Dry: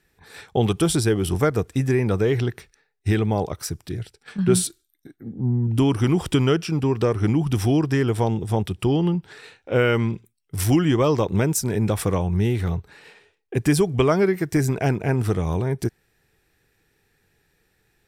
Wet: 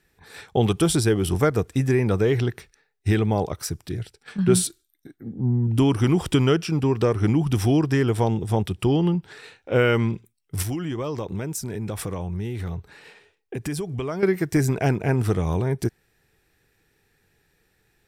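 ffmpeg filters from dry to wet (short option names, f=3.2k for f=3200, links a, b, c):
-filter_complex "[0:a]asettb=1/sr,asplit=3[a][b][c];[a]atrim=end=10.624[d];[b]atrim=start=10.62:end=14.23,asetpts=PTS-STARTPTS,afade=t=in:d=0.004:c=qsin,afade=t=out:st=3.606:d=0.004:c=qsin,acompressor=threshold=-28dB:ratio=3:attack=3.2:release=140:knee=1:detection=peak[e];[c]atrim=start=14.226[f];[d][e]acrossfade=d=0.004:c1=hsin:c2=qsin[g];[g][f]acrossfade=d=0.004:c1=qsin:c2=hsin"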